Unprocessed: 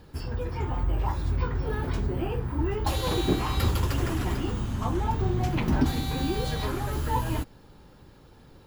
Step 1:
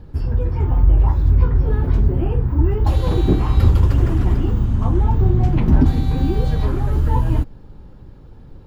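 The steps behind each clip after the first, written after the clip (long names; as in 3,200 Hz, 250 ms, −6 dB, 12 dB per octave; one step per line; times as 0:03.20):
spectral tilt −3 dB per octave
level +1.5 dB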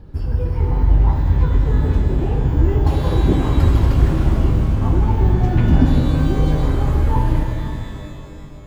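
reverb with rising layers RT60 2.5 s, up +12 semitones, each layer −8 dB, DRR 1.5 dB
level −1.5 dB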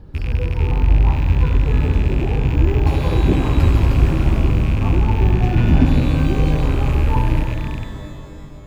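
loose part that buzzes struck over −21 dBFS, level −22 dBFS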